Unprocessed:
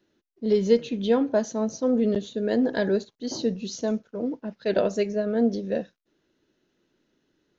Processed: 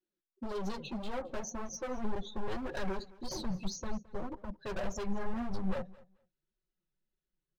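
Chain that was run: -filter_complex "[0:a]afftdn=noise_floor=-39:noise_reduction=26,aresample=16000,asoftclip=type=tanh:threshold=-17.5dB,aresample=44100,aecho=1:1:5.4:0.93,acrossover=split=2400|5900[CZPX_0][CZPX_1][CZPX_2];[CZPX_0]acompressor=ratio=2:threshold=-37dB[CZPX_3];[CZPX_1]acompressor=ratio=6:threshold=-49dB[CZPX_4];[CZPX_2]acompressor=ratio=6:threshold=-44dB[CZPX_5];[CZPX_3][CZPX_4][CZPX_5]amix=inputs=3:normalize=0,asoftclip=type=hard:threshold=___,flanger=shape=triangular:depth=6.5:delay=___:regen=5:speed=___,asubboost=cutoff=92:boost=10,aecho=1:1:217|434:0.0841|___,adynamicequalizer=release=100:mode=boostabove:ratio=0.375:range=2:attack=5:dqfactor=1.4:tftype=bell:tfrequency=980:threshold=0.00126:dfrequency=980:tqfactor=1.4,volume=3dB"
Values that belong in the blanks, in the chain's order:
-35dB, 1.4, 1.8, 0.0143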